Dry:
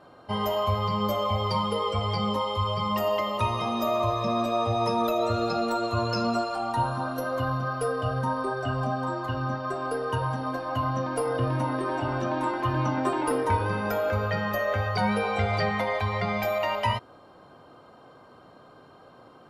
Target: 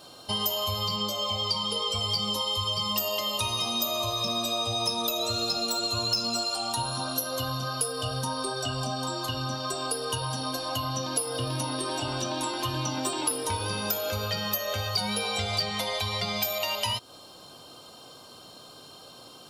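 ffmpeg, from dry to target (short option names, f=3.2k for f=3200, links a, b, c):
-filter_complex "[0:a]aexciter=amount=4.2:drive=9.9:freq=2.9k,acompressor=threshold=-29dB:ratio=2.5,asettb=1/sr,asplit=3[a][b][c];[a]atrim=end=0.964[d];[b]atrim=start=0.96:end=1.91,asetpts=PTS-STARTPTS,afade=t=in:d=0.004:c=qsin,afade=t=out:st=0.946:d=0.004:c=qsin,highpass=100,lowpass=8k[e];[c]atrim=start=1.906[f];[d][e]acrossfade=d=0.004:c1=hsin:c2=qsin[g];[g][f]acrossfade=d=0.004:c1=qsin:c2=hsin"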